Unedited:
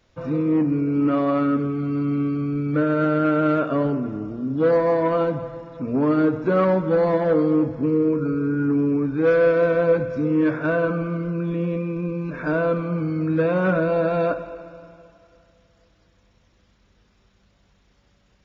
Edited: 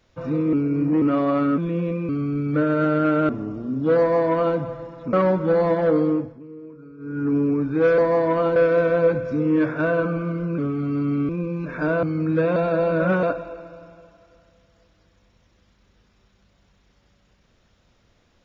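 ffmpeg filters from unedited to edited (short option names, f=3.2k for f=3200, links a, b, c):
-filter_complex "[0:a]asplit=16[a][b][c][d][e][f][g][h][i][j][k][l][m][n][o][p];[a]atrim=end=0.532[q];[b]atrim=start=0.528:end=1.022,asetpts=PTS-STARTPTS,areverse[r];[c]atrim=start=1.018:end=1.582[s];[d]atrim=start=11.428:end=11.942[t];[e]atrim=start=2.288:end=3.492[u];[f]atrim=start=4.028:end=5.872[v];[g]atrim=start=6.558:end=7.83,asetpts=PTS-STARTPTS,afade=t=out:st=0.902:d=0.37:silence=0.1[w];[h]atrim=start=7.83:end=8.41,asetpts=PTS-STARTPTS,volume=-20dB[x];[i]atrim=start=8.41:end=9.412,asetpts=PTS-STARTPTS,afade=t=in:d=0.37:silence=0.1[y];[j]atrim=start=4.728:end=5.312[z];[k]atrim=start=9.408:end=11.432[aa];[l]atrim=start=1.578:end=2.292[ab];[m]atrim=start=11.938:end=12.682[ac];[n]atrim=start=13.038:end=13.572[ad];[o]atrim=start=13.568:end=14.242,asetpts=PTS-STARTPTS,areverse[ae];[p]atrim=start=14.238[af];[q][r]acrossfade=d=0.004:c1=hsin:c2=hsin[ag];[ag][s]acrossfade=d=0.004:c1=hsin:c2=hsin[ah];[ah][t]acrossfade=d=0.004:c1=hsin:c2=hsin[ai];[ai][u]acrossfade=d=0.004:c1=hsin:c2=hsin[aj];[aj][v]acrossfade=d=0.004:c1=hsin:c2=hsin[ak];[w][x][y]concat=n=3:v=0:a=1[al];[ak][al]acrossfade=d=0.004:c1=hsin:c2=hsin[am];[am][z]acrossfade=d=0.004:c1=hsin:c2=hsin[an];[an][aa]acrossfade=d=0.004:c1=hsin:c2=hsin[ao];[ao][ab]acrossfade=d=0.004:c1=hsin:c2=hsin[ap];[ap][ac]acrossfade=d=0.004:c1=hsin:c2=hsin[aq];[aq][ad]acrossfade=d=0.004:c1=hsin:c2=hsin[ar];[ar][ae]acrossfade=d=0.004:c1=hsin:c2=hsin[as];[as][af]acrossfade=d=0.004:c1=hsin:c2=hsin"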